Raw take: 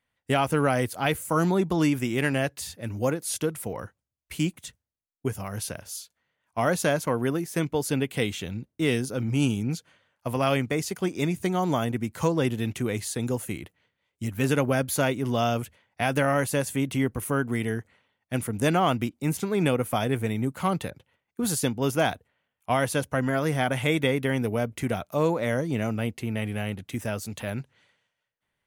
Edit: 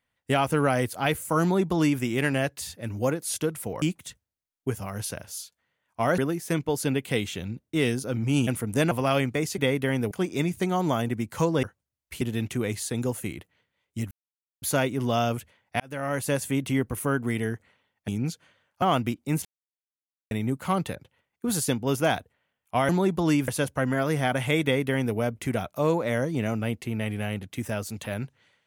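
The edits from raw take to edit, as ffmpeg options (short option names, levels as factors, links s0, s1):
-filter_complex "[0:a]asplit=18[s0][s1][s2][s3][s4][s5][s6][s7][s8][s9][s10][s11][s12][s13][s14][s15][s16][s17];[s0]atrim=end=3.822[s18];[s1]atrim=start=4.398:end=6.762[s19];[s2]atrim=start=7.238:end=9.532[s20];[s3]atrim=start=18.328:end=18.772[s21];[s4]atrim=start=10.268:end=10.942[s22];[s5]atrim=start=23.988:end=24.522[s23];[s6]atrim=start=10.938:end=12.462[s24];[s7]atrim=start=3.818:end=4.402[s25];[s8]atrim=start=12.458:end=14.36,asetpts=PTS-STARTPTS,afade=t=out:st=1.898:d=0.004:c=hsin[s26];[s9]atrim=start=14.36:end=14.87,asetpts=PTS-STARTPTS,volume=0[s27];[s10]atrim=start=14.87:end=16.05,asetpts=PTS-STARTPTS,afade=t=in:d=0.004:c=hsin,afade=t=out:st=1.176:d=0.004:c=hsin[s28];[s11]atrim=start=16.05:end=18.332,asetpts=PTS-STARTPTS,afade=t=in:d=0.53[s29];[s12]atrim=start=9.528:end=10.272[s30];[s13]atrim=start=18.768:end=19.4,asetpts=PTS-STARTPTS,afade=t=out:st=0.628:d=0.004:c=hsin[s31];[s14]atrim=start=19.4:end=20.26,asetpts=PTS-STARTPTS,volume=0[s32];[s15]atrim=start=20.26:end=22.842,asetpts=PTS-STARTPTS,afade=t=in:d=0.004:c=hsin[s33];[s16]atrim=start=1.418:end=2.012[s34];[s17]atrim=start=22.838[s35];[s18][s19]acrossfade=d=0.004:c1=hsin:c2=hsin[s36];[s36][s20]acrossfade=d=0.004:c1=hsin:c2=hsin[s37];[s37][s21]acrossfade=d=0.004:c1=hsin:c2=hsin[s38];[s38][s22]acrossfade=d=0.004:c1=hsin:c2=hsin[s39];[s39][s23]acrossfade=d=0.004:c1=hsin:c2=hsin[s40];[s40][s24]acrossfade=d=0.004:c1=hsin:c2=hsin[s41];[s41][s25]acrossfade=d=0.004:c1=hsin:c2=hsin[s42];[s26][s27][s28][s29]concat=n=4:v=0:a=1[s43];[s42][s43]acrossfade=d=0.004:c1=hsin:c2=hsin[s44];[s44][s30]acrossfade=d=0.004:c1=hsin:c2=hsin[s45];[s31][s32][s33]concat=n=3:v=0:a=1[s46];[s45][s46]acrossfade=d=0.004:c1=hsin:c2=hsin[s47];[s47][s34]acrossfade=d=0.004:c1=hsin:c2=hsin[s48];[s48][s35]acrossfade=d=0.004:c1=hsin:c2=hsin"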